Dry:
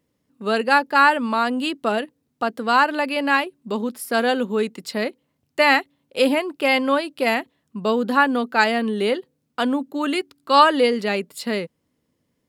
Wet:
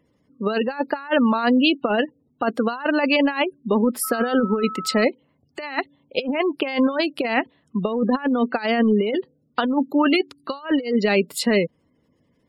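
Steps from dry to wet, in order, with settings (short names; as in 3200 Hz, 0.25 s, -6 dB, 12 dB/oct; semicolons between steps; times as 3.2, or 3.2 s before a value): spectral gate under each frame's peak -25 dB strong; negative-ratio compressor -23 dBFS, ratio -0.5; 4.03–5.03 whine 1300 Hz -33 dBFS; gain +3.5 dB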